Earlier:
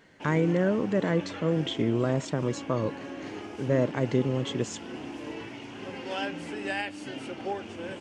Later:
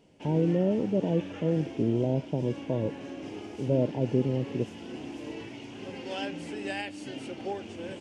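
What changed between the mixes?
speech: add brick-wall FIR low-pass 1000 Hz; master: add bell 1300 Hz -7.5 dB 1.3 oct

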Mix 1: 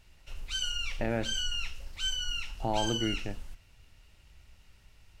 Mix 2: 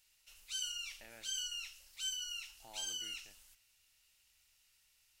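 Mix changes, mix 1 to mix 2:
speech -5.5 dB; master: add pre-emphasis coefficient 0.97

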